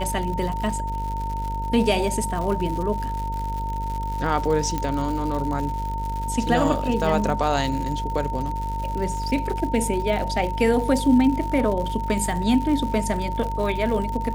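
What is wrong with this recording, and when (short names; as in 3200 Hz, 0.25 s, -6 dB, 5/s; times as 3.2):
buzz 50 Hz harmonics 13 -29 dBFS
crackle 140/s -29 dBFS
tone 910 Hz -28 dBFS
4.78 pop -12 dBFS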